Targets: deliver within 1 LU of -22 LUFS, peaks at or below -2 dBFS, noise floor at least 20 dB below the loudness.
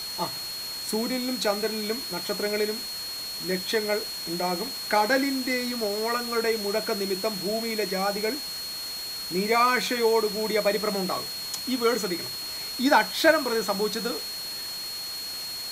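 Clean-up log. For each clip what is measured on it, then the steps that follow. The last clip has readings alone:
steady tone 4.3 kHz; tone level -33 dBFS; noise floor -35 dBFS; noise floor target -47 dBFS; loudness -26.5 LUFS; peak level -6.0 dBFS; loudness target -22.0 LUFS
-> band-stop 4.3 kHz, Q 30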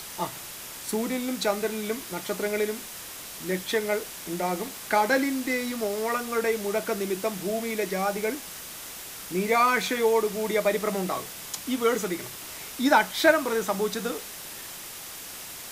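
steady tone not found; noise floor -40 dBFS; noise floor target -48 dBFS
-> noise print and reduce 8 dB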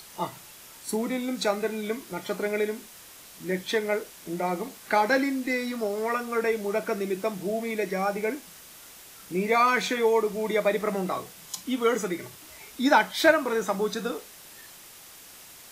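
noise floor -48 dBFS; loudness -27.0 LUFS; peak level -6.0 dBFS; loudness target -22.0 LUFS
-> trim +5 dB; peak limiter -2 dBFS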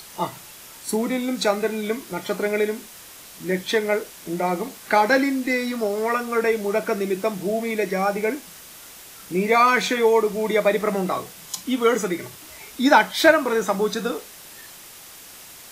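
loudness -22.0 LUFS; peak level -2.0 dBFS; noise floor -43 dBFS

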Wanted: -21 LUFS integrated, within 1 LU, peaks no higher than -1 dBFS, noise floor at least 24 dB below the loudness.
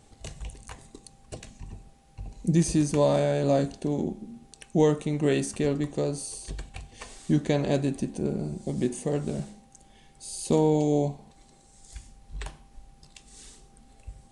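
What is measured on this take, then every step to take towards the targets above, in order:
loudness -26.5 LUFS; peak level -10.5 dBFS; loudness target -21.0 LUFS
-> trim +5.5 dB

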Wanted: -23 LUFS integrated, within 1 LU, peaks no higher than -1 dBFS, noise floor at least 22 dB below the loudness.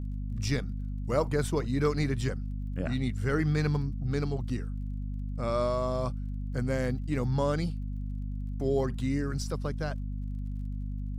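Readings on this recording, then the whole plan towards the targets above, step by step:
tick rate 32 per s; hum 50 Hz; highest harmonic 250 Hz; hum level -31 dBFS; loudness -31.5 LUFS; peak level -14.5 dBFS; loudness target -23.0 LUFS
-> de-click; hum notches 50/100/150/200/250 Hz; trim +8.5 dB

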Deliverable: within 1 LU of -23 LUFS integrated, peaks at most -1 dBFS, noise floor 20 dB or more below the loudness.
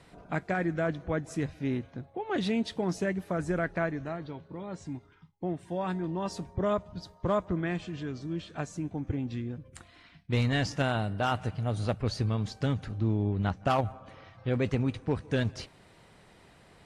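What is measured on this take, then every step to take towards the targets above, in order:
loudness -32.0 LUFS; peak level -18.0 dBFS; loudness target -23.0 LUFS
-> trim +9 dB

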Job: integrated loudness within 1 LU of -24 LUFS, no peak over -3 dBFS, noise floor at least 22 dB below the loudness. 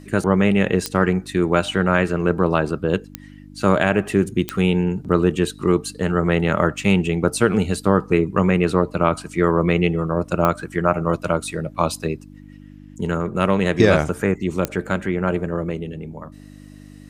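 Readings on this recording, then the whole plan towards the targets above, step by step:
clicks found 5; hum 50 Hz; highest harmonic 300 Hz; hum level -41 dBFS; loudness -20.0 LUFS; peak level -1.5 dBFS; loudness target -24.0 LUFS
-> de-click; de-hum 50 Hz, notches 6; trim -4 dB

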